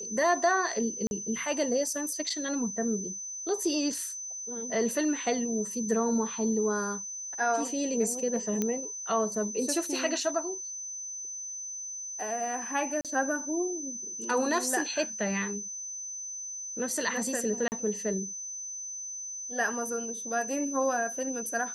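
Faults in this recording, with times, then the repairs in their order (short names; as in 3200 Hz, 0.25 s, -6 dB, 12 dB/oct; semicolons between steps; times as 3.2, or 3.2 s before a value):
tone 6100 Hz -36 dBFS
1.07–1.11 gap 41 ms
8.62 pop -15 dBFS
13.01–13.05 gap 37 ms
17.68–17.72 gap 39 ms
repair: de-click; notch 6100 Hz, Q 30; interpolate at 1.07, 41 ms; interpolate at 13.01, 37 ms; interpolate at 17.68, 39 ms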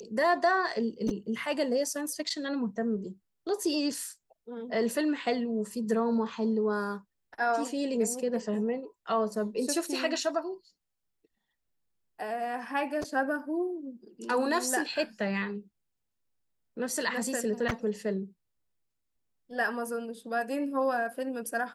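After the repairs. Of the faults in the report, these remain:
none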